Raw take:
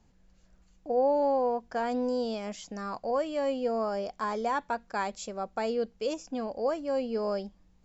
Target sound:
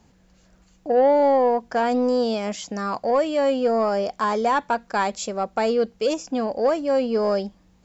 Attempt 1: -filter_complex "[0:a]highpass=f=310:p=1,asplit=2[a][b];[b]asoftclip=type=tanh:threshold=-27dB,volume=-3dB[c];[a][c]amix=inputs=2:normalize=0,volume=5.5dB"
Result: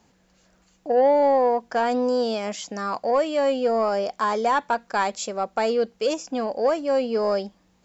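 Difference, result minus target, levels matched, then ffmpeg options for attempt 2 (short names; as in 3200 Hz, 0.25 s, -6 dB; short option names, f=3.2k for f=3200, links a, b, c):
125 Hz band -3.5 dB
-filter_complex "[0:a]highpass=f=88:p=1,asplit=2[a][b];[b]asoftclip=type=tanh:threshold=-27dB,volume=-3dB[c];[a][c]amix=inputs=2:normalize=0,volume=5.5dB"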